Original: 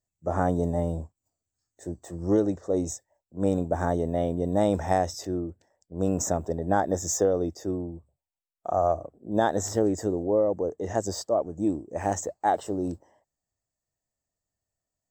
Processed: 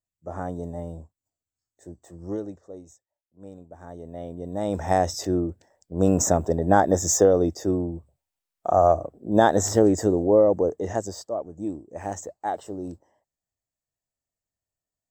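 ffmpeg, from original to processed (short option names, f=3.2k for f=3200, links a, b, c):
-af "volume=17.5dB,afade=t=out:st=2.26:d=0.58:silence=0.266073,afade=t=in:st=3.79:d=0.82:silence=0.223872,afade=t=in:st=4.61:d=0.61:silence=0.266073,afade=t=out:st=10.62:d=0.51:silence=0.298538"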